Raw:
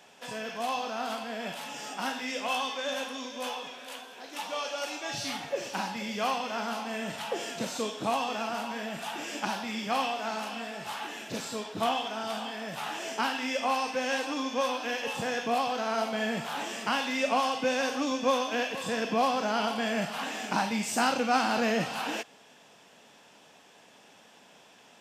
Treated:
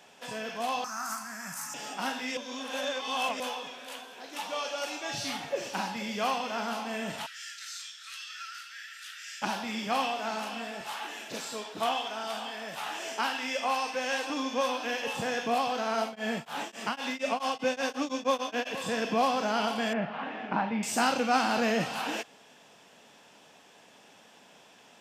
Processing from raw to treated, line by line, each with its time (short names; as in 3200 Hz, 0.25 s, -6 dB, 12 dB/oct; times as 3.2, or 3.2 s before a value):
0.84–1.74 EQ curve 170 Hz 0 dB, 480 Hz -24 dB, 1200 Hz +5 dB, 1900 Hz 0 dB, 3300 Hz -19 dB, 6000 Hz +11 dB
2.37–3.4 reverse
7.26–9.42 rippled Chebyshev high-pass 1300 Hz, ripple 6 dB
10.81–14.3 HPF 400 Hz 6 dB/oct
15.98–18.66 beating tremolo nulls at 3 Hz -> 8 Hz
19.93–20.83 Bessel low-pass 1900 Hz, order 4